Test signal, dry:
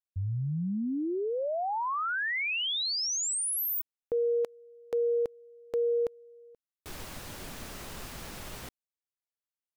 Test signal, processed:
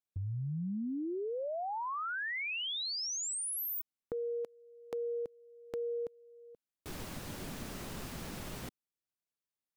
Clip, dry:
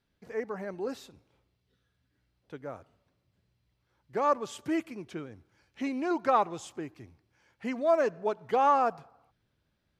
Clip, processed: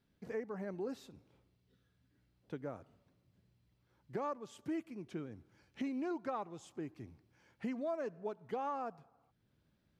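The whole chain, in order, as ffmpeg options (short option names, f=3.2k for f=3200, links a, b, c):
-af "equalizer=f=200:t=o:w=2.2:g=7,acompressor=threshold=-32dB:ratio=6:attack=6.8:release=726:knee=1:detection=rms,volume=-3dB"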